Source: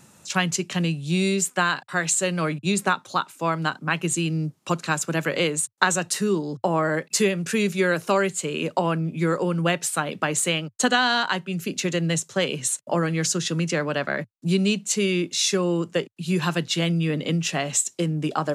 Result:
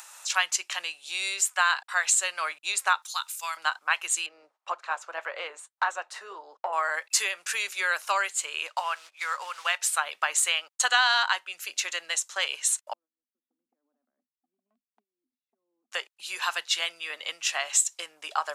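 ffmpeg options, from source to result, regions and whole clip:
-filter_complex "[0:a]asettb=1/sr,asplit=3[s0][s1][s2];[s0]atrim=end=3.024[s3];[s1]atrim=start=3.02:end=3.57,asetpts=PTS-STARTPTS,afade=t=in:d=0.004:c=qsin,afade=t=out:st=0.546:d=0.004:c=qsin,aderivative,acontrast=77[s4];[s2]atrim=start=3.566[s5];[s3][s4]acrossfade=d=0.004:c1=hsin:c2=qsin[s6];[s6][s5]acrossfade=d=0.004:c1=qsin:c2=hsin,asettb=1/sr,asplit=3[s7][s8][s9];[s7]atrim=end=4.264[s10];[s8]atrim=start=4.26:end=6.73,asetpts=PTS-STARTPTS,afade=t=in:d=0.004:c=qsin,afade=t=out:st=2.466:d=0.004:c=qsin,acontrast=85,flanger=delay=0.5:depth=7.6:regen=-70:speed=1.8:shape=sinusoidal,bandpass=f=550:t=q:w=0.92[s11];[s9]atrim=start=6.726[s12];[s10][s11]acrossfade=d=0.004:c1=hsin:c2=qsin[s13];[s13][s12]acrossfade=d=0.004:c1=qsin:c2=hsin,asettb=1/sr,asplit=3[s14][s15][s16];[s14]atrim=end=8.674[s17];[s15]atrim=start=8.67:end=9.79,asetpts=PTS-STARTPTS,afade=t=in:d=0.004:c=qsin,afade=t=out:st=1.116:d=0.004:c=qsin,acrusher=bits=6:mode=log:mix=0:aa=0.000001,highpass=710,lowpass=7700[s18];[s16]atrim=start=9.786[s19];[s17][s18]acrossfade=d=0.004:c1=hsin:c2=qsin[s20];[s20][s19]acrossfade=d=0.004:c1=qsin:c2=hsin,asettb=1/sr,asplit=3[s21][s22][s23];[s21]atrim=end=12.934[s24];[s22]atrim=start=12.93:end=15.92,asetpts=PTS-STARTPTS,afade=t=in:d=0.004:c=qsin,afade=t=out:st=2.986:d=0.004:c=qsin,acompressor=threshold=0.0447:ratio=6:attack=3.2:release=140:knee=1:detection=peak,asuperpass=centerf=240:order=4:qfactor=6.4,volume=50.1,asoftclip=hard,volume=0.02[s25];[s23]atrim=start=15.916[s26];[s24][s25]acrossfade=d=0.004:c1=hsin:c2=qsin[s27];[s27][s26]acrossfade=d=0.004:c1=qsin:c2=hsin,agate=range=0.178:threshold=0.00891:ratio=16:detection=peak,acompressor=mode=upward:threshold=0.0501:ratio=2.5,highpass=f=830:w=0.5412,highpass=f=830:w=1.3066"

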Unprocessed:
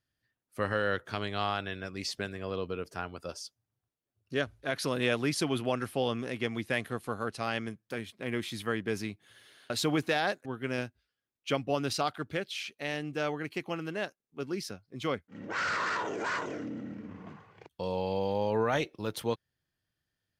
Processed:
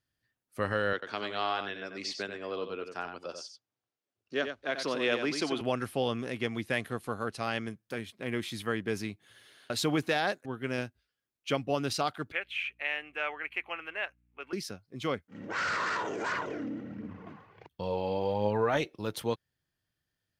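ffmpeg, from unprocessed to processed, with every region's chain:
-filter_complex "[0:a]asettb=1/sr,asplit=3[s0][s1][s2];[s0]atrim=end=0.934[s3];[s1]atrim=start=0.93:end=5.61,asetpts=PTS-STARTPTS,afade=t=in:d=0.004:c=qsin,afade=t=out:st=4.676:d=0.004:c=qsin,acrossover=split=220 7400:gain=0.126 1 0.0708[s4][s5][s6];[s4][s5][s6]amix=inputs=3:normalize=0,aecho=1:1:91:0.422,atrim=end_sample=206388[s7];[s2]atrim=start=5.606[s8];[s3][s7]acrossfade=d=0.004:c1=hsin:c2=qsin[s9];[s9][s8]acrossfade=d=0.004:c1=qsin:c2=hsin,asettb=1/sr,asplit=3[s10][s11][s12];[s10]atrim=end=12.324[s13];[s11]atrim=start=12.32:end=14.53,asetpts=PTS-STARTPTS,afade=t=in:d=0.004:c=qsin,afade=t=out:st=2.206:d=0.004:c=qsin,highpass=760,highshelf=f=3500:t=q:w=3:g=-12,aeval=exprs='val(0)+0.000316*(sin(2*PI*60*n/s)+sin(2*PI*2*60*n/s)/2+sin(2*PI*3*60*n/s)/3+sin(2*PI*4*60*n/s)/4+sin(2*PI*5*60*n/s)/5)':c=same[s14];[s12]atrim=start=14.526[s15];[s13][s14]acrossfade=d=0.004:c1=hsin:c2=qsin[s16];[s16][s15]acrossfade=d=0.004:c1=qsin:c2=hsin,asettb=1/sr,asplit=3[s17][s18][s19];[s17]atrim=end=16.324[s20];[s18]atrim=start=16.32:end=18.77,asetpts=PTS-STARTPTS,afade=t=in:d=0.004:c=qsin,afade=t=out:st=2.446:d=0.004:c=qsin,equalizer=f=8000:t=o:w=1.2:g=-9,aphaser=in_gain=1:out_gain=1:delay=4.1:decay=0.36:speed=1.4:type=triangular[s21];[s19]atrim=start=18.766[s22];[s20][s21]acrossfade=d=0.004:c1=hsin:c2=qsin[s23];[s23][s22]acrossfade=d=0.004:c1=qsin:c2=hsin"

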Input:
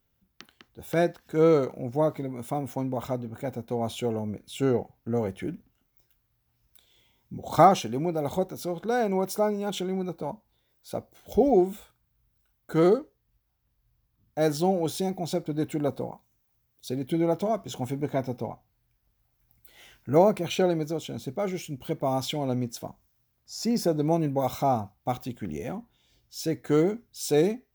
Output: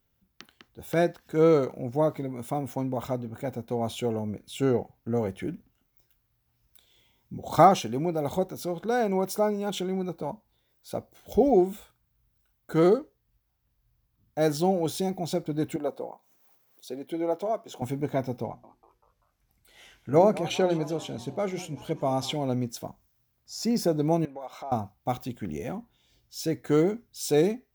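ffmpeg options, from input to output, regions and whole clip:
-filter_complex "[0:a]asettb=1/sr,asplit=3[s0][s1][s2];[s0]atrim=end=15.764[s3];[s1]atrim=start=15.76:end=17.82,asetpts=PTS-STARTPTS,afade=t=in:d=0.004:c=qsin,afade=t=out:st=2.056:d=0.004:c=qsin,tiltshelf=f=740:g=6,acompressor=mode=upward:threshold=0.00794:ratio=2.5:attack=3.2:release=140:knee=2.83:detection=peak,highpass=530[s4];[s2]atrim=start=17.816[s5];[s3][s4]acrossfade=d=0.004:c1=hsin:c2=qsin[s6];[s6][s5]acrossfade=d=0.004:c1=qsin:c2=hsin,asettb=1/sr,asplit=3[s7][s8][s9];[s7]atrim=end=18.444[s10];[s8]atrim=start=18.44:end=22.33,asetpts=PTS-STARTPTS,afade=t=in:d=0.004:c=qsin,afade=t=out:st=3.886:d=0.004:c=qsin,lowpass=11000,bandreject=f=60:t=h:w=6,bandreject=f=120:t=h:w=6,bandreject=f=180:t=h:w=6,bandreject=f=240:t=h:w=6,bandreject=f=300:t=h:w=6,bandreject=f=360:t=h:w=6,asplit=5[s11][s12][s13][s14][s15];[s12]adelay=194,afreqshift=120,volume=0.119[s16];[s13]adelay=388,afreqshift=240,volume=0.0582[s17];[s14]adelay=582,afreqshift=360,volume=0.0285[s18];[s15]adelay=776,afreqshift=480,volume=0.014[s19];[s11][s16][s17][s18][s19]amix=inputs=5:normalize=0,atrim=end_sample=171549[s20];[s9]atrim=start=22.326[s21];[s10][s20]acrossfade=d=0.004:c1=hsin:c2=qsin[s22];[s22][s21]acrossfade=d=0.004:c1=qsin:c2=hsin,asettb=1/sr,asplit=3[s23][s24][s25];[s23]atrim=end=24.254[s26];[s24]atrim=start=24.25:end=24.72,asetpts=PTS-STARTPTS,afade=t=in:d=0.004:c=qsin,afade=t=out:st=0.466:d=0.004:c=qsin,highpass=550,aemphasis=mode=reproduction:type=75kf,acompressor=threshold=0.0112:ratio=2.5:attack=3.2:release=140:knee=1:detection=peak[s27];[s25]atrim=start=24.716[s28];[s26][s27]acrossfade=d=0.004:c1=hsin:c2=qsin[s29];[s29][s28]acrossfade=d=0.004:c1=qsin:c2=hsin"

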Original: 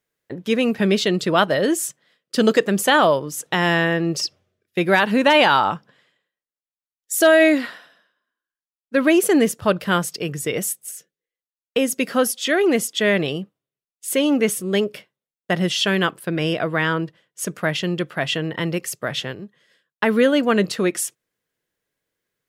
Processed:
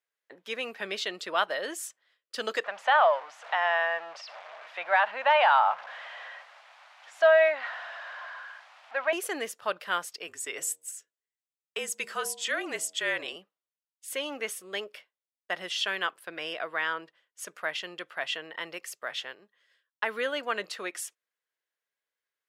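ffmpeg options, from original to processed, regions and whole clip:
-filter_complex "[0:a]asettb=1/sr,asplit=3[s0][s1][s2];[s0]atrim=end=2.644[s3];[s1]atrim=start=2.64:end=9.13,asetpts=PTS-STARTPTS,afade=t=in:d=0.004:c=qsin,afade=t=out:st=6.486:d=0.004:c=qsin,aeval=exprs='val(0)+0.5*0.0447*sgn(val(0))':c=same,highpass=200,lowpass=2600,lowshelf=f=490:t=q:w=3:g=-10.5[s4];[s2]atrim=start=9.126[s5];[s3][s4]acrossfade=d=0.004:c1=hsin:c2=qsin[s6];[s6][s5]acrossfade=d=0.004:c1=qsin:c2=hsin,asettb=1/sr,asplit=3[s7][s8][s9];[s7]atrim=end=10.274[s10];[s8]atrim=start=10.27:end=13.36,asetpts=PTS-STARTPTS,afade=t=in:d=0.004:c=qsin,afade=t=out:st=3.086:d=0.004:c=qsin,equalizer=f=7800:t=o:w=0.42:g=10.5,bandreject=f=85.6:t=h:w=4,bandreject=f=171.2:t=h:w=4,bandreject=f=256.8:t=h:w=4,bandreject=f=342.4:t=h:w=4,bandreject=f=428:t=h:w=4,bandreject=f=513.6:t=h:w=4,bandreject=f=599.2:t=h:w=4,bandreject=f=684.8:t=h:w=4,bandreject=f=770.4:t=h:w=4,bandreject=f=856:t=h:w=4,bandreject=f=941.6:t=h:w=4,bandreject=f=1027.2:t=h:w=4,afreqshift=-42[s11];[s9]atrim=start=13.356[s12];[s10][s11]acrossfade=d=0.004:c1=hsin:c2=qsin[s13];[s13][s12]acrossfade=d=0.004:c1=qsin:c2=hsin,highpass=790,highshelf=f=5600:g=-8,volume=0.473"

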